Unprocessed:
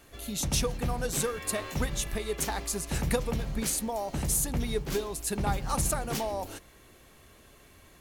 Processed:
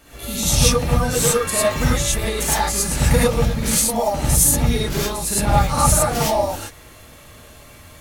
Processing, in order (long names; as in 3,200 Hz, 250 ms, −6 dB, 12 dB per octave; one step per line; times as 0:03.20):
reverb whose tail is shaped and stops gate 130 ms rising, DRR −8 dB
level +4 dB